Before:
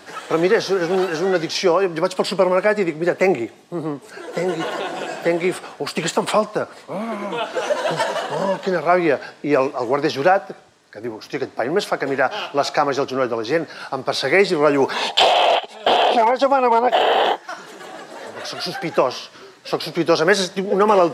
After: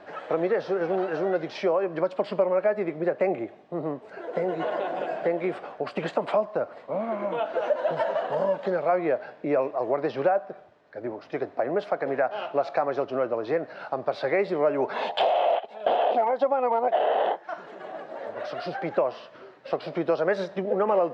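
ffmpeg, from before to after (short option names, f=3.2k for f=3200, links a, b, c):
-filter_complex "[0:a]asettb=1/sr,asplit=3[a][b][c];[a]atrim=end=8.324[d];[b]atrim=start=8.32:end=8.98,asetpts=PTS-STARTPTS,afade=t=in:d=0.004:c=qsin,afade=t=out:st=0.656:d=0.004:c=qsin,highshelf=f=5.7k:g=8.5[e];[c]atrim=start=8.976[f];[d][e]acrossfade=d=0.004:c1=hsin:c2=qsin[g];[g][f]acrossfade=d=0.004:c1=qsin:c2=hsin,lowpass=2.3k,equalizer=f=610:w=2.2:g=9,acompressor=threshold=-18dB:ratio=2,volume=-6.5dB"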